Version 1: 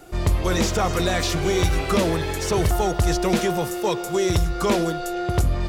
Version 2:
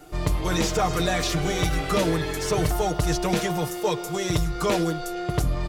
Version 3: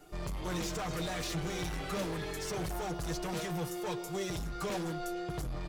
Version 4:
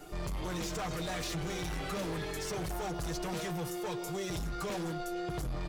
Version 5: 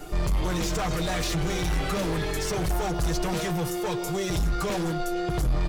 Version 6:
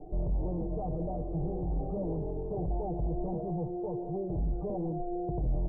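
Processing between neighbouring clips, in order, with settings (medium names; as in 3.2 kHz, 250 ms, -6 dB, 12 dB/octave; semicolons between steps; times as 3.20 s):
comb 6.6 ms; trim -3 dB
hard clipper -24.5 dBFS, distortion -8 dB; flange 0.45 Hz, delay 4.8 ms, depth 1.6 ms, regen +62%; trim -4.5 dB
peak limiter -38 dBFS, peak gain reduction 9 dB; trim +7 dB
bass shelf 74 Hz +7.5 dB; trim +8 dB
steep low-pass 790 Hz 48 dB/octave; trim -5.5 dB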